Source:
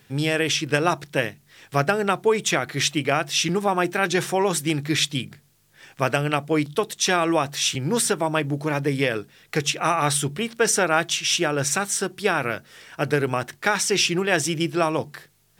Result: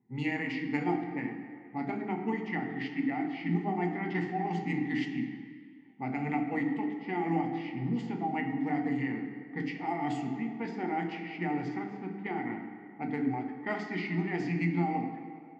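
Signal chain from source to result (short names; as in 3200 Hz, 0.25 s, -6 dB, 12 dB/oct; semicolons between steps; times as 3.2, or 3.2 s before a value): vowel filter u; formant shift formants -3 st; low-pass opened by the level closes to 740 Hz, open at -29.5 dBFS; on a send: reverb RT60 2.2 s, pre-delay 3 ms, DRR 1 dB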